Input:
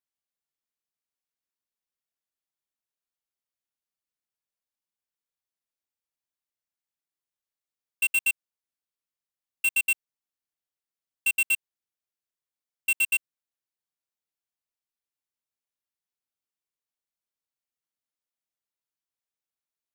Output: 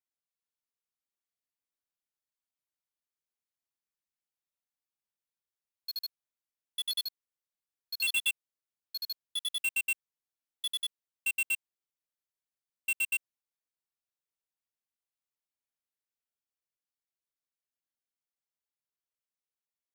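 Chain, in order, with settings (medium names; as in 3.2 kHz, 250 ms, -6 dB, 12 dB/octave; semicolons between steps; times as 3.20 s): ever faster or slower copies 415 ms, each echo +4 st, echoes 2; trim -6.5 dB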